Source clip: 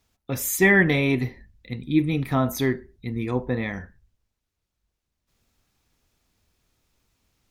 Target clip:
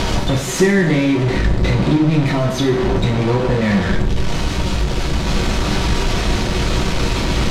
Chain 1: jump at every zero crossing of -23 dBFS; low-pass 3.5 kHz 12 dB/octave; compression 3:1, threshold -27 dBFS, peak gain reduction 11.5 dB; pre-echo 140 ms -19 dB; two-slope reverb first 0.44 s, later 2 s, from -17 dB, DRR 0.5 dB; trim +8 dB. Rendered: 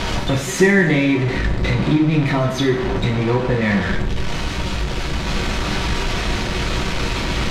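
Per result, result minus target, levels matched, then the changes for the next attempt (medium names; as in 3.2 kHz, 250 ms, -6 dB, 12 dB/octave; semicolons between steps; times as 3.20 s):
jump at every zero crossing: distortion -6 dB; 2 kHz band +3.5 dB
change: jump at every zero crossing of -14.5 dBFS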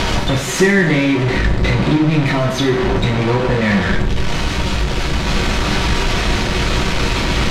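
2 kHz band +3.5 dB
add after compression: peaking EQ 2 kHz -5 dB 2.1 oct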